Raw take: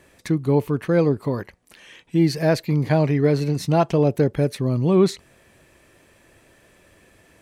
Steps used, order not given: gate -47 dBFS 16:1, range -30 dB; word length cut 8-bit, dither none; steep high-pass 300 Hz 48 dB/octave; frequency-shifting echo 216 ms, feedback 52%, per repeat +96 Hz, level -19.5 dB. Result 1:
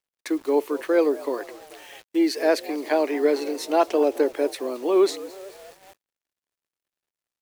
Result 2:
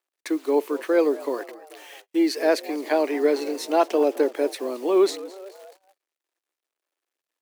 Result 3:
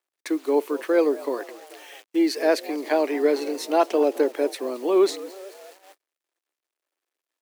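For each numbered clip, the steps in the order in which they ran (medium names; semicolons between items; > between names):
frequency-shifting echo > steep high-pass > word length cut > gate; word length cut > frequency-shifting echo > steep high-pass > gate; frequency-shifting echo > word length cut > steep high-pass > gate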